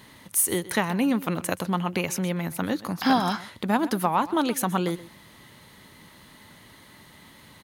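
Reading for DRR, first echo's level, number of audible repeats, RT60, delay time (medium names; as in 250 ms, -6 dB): no reverb, -17.5 dB, 1, no reverb, 127 ms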